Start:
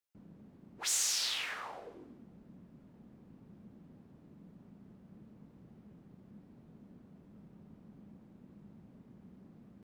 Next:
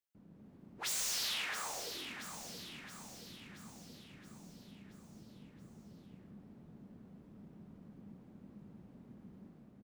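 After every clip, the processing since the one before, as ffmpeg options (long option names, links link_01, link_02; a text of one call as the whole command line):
ffmpeg -i in.wav -filter_complex "[0:a]dynaudnorm=framelen=110:gausssize=7:maxgain=5dB,aeval=exprs='0.0473*(abs(mod(val(0)/0.0473+3,4)-2)-1)':channel_layout=same,asplit=2[link_01][link_02];[link_02]aecho=0:1:675|1350|2025|2700|3375|4050|4725:0.398|0.223|0.125|0.0699|0.0392|0.0219|0.0123[link_03];[link_01][link_03]amix=inputs=2:normalize=0,volume=-5dB" out.wav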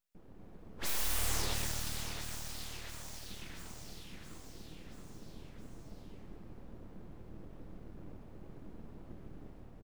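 ffmpeg -i in.wav -filter_complex "[0:a]lowshelf=frequency=130:width_type=q:width=3:gain=7.5,aeval=exprs='abs(val(0))':channel_layout=same,asplit=9[link_01][link_02][link_03][link_04][link_05][link_06][link_07][link_08][link_09];[link_02]adelay=118,afreqshift=-38,volume=-9dB[link_10];[link_03]adelay=236,afreqshift=-76,volume=-12.9dB[link_11];[link_04]adelay=354,afreqshift=-114,volume=-16.8dB[link_12];[link_05]adelay=472,afreqshift=-152,volume=-20.6dB[link_13];[link_06]adelay=590,afreqshift=-190,volume=-24.5dB[link_14];[link_07]adelay=708,afreqshift=-228,volume=-28.4dB[link_15];[link_08]adelay=826,afreqshift=-266,volume=-32.3dB[link_16];[link_09]adelay=944,afreqshift=-304,volume=-36.1dB[link_17];[link_01][link_10][link_11][link_12][link_13][link_14][link_15][link_16][link_17]amix=inputs=9:normalize=0,volume=5.5dB" out.wav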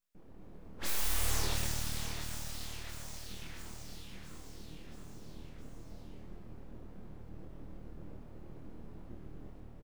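ffmpeg -i in.wav -filter_complex "[0:a]asplit=2[link_01][link_02];[link_02]adelay=26,volume=-3dB[link_03];[link_01][link_03]amix=inputs=2:normalize=0,volume=-1.5dB" out.wav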